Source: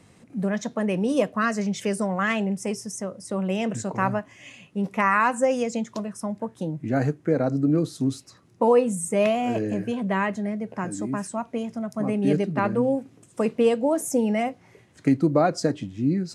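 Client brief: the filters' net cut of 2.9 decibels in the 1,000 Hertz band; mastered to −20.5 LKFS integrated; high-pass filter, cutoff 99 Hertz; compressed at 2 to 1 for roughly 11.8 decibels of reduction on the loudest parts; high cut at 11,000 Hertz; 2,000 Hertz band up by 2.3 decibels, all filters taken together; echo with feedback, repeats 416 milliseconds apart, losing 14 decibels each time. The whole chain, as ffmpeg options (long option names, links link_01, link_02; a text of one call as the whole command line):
ffmpeg -i in.wav -af "highpass=99,lowpass=11000,equalizer=frequency=1000:width_type=o:gain=-5,equalizer=frequency=2000:width_type=o:gain=4.5,acompressor=threshold=-38dB:ratio=2,aecho=1:1:416|832:0.2|0.0399,volume=14.5dB" out.wav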